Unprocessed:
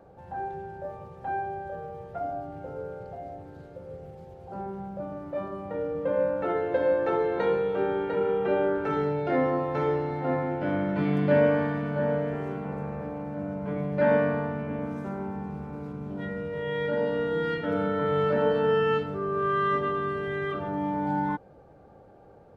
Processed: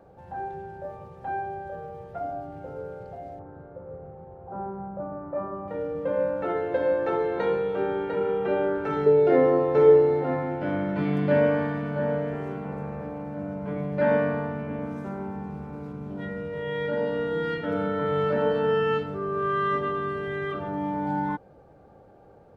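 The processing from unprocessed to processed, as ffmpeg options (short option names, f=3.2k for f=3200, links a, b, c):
-filter_complex "[0:a]asettb=1/sr,asplit=3[a][b][c];[a]atrim=end=3.394[d];[b]atrim=start=3.39:end=5.68,asetpts=PTS-STARTPTS,afade=t=in:d=0.004:c=qsin,afade=t=out:st=2.286:d=0.004:c=qsin,lowpass=f=1.2k:t=q:w=1.6[e];[c]atrim=start=5.676[f];[d][e]acrossfade=d=0.004:c1=hsin:c2=qsin[g];[g][f]acrossfade=d=0.004:c1=qsin:c2=hsin,asettb=1/sr,asplit=3[h][i][j];[h]atrim=end=9.064[k];[i]atrim=start=9.06:end=10.24,asetpts=PTS-STARTPTS,afade=t=in:d=0.004:c=qsin,afade=t=out:st=1.176:d=0.004:c=qsin,equalizer=f=430:t=o:w=0.5:g=13.5[l];[j]atrim=start=10.236[m];[k][l]acrossfade=d=0.004:c1=hsin:c2=qsin[n];[n][m]acrossfade=d=0.004:c1=qsin:c2=hsin"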